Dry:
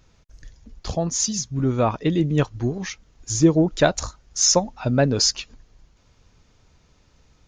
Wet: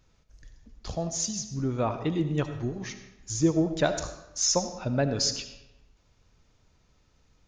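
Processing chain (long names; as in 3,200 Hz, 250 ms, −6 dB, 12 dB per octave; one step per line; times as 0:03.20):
comb and all-pass reverb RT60 0.92 s, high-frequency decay 0.8×, pre-delay 35 ms, DRR 9 dB
level −7.5 dB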